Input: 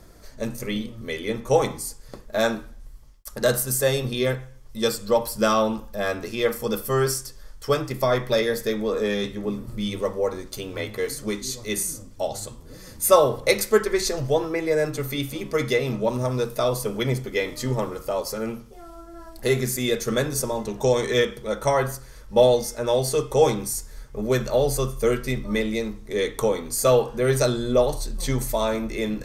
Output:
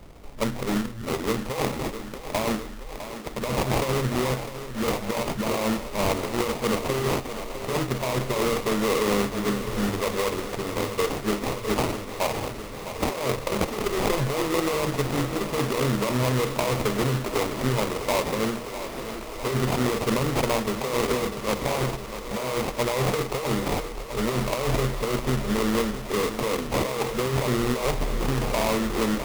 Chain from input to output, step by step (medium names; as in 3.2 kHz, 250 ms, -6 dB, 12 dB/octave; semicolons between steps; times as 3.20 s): sample-rate reducer 1.6 kHz, jitter 20%; compressor with a negative ratio -24 dBFS, ratio -1; thinning echo 655 ms, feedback 80%, high-pass 160 Hz, level -11 dB